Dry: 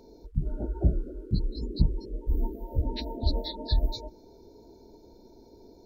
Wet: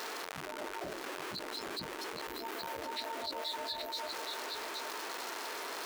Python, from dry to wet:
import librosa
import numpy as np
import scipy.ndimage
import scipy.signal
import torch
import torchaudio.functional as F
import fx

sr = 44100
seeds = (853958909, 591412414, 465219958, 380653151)

y = x + 0.5 * 10.0 ** (-36.0 / 20.0) * np.sign(x)
y = scipy.signal.sosfilt(scipy.signal.butter(2, 1200.0, 'highpass', fs=sr, output='sos'), y)
y = fx.high_shelf(y, sr, hz=2200.0, db=-8.5)
y = y + 10.0 ** (-9.5 / 20.0) * np.pad(y, (int(820 * sr / 1000.0), 0))[:len(y)]
y = fx.env_flatten(y, sr, amount_pct=70)
y = y * librosa.db_to_amplitude(1.0)